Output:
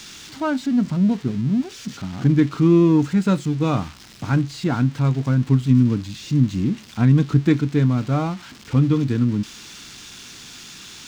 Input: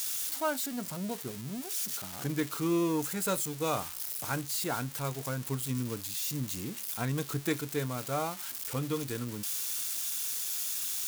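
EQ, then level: distance through air 160 m; resonant low shelf 350 Hz +9.5 dB, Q 1.5; +8.0 dB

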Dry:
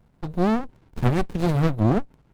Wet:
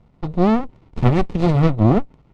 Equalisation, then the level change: distance through air 100 m; band-stop 1.6 kHz, Q 5.5; +5.5 dB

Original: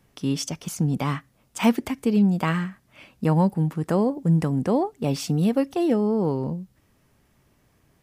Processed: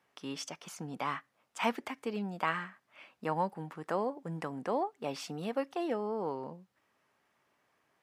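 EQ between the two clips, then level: high-pass 1.1 kHz 12 dB/octave; tilt EQ -4.5 dB/octave; 0.0 dB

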